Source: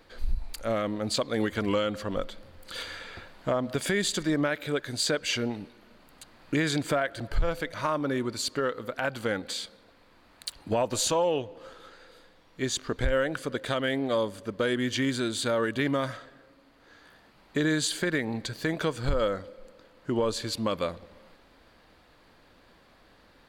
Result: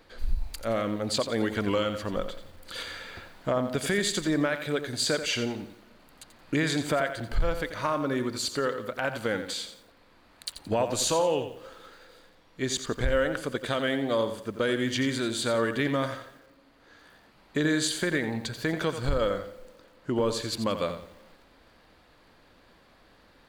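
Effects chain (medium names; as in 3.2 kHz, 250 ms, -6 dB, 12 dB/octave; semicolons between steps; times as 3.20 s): bit-crushed delay 87 ms, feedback 35%, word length 9-bit, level -9.5 dB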